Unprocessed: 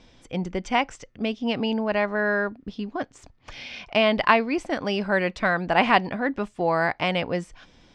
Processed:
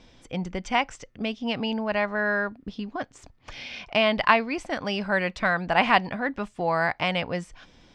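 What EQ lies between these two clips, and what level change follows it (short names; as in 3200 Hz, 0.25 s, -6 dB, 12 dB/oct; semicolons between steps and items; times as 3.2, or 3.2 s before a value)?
dynamic EQ 350 Hz, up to -6 dB, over -36 dBFS, Q 1.1; 0.0 dB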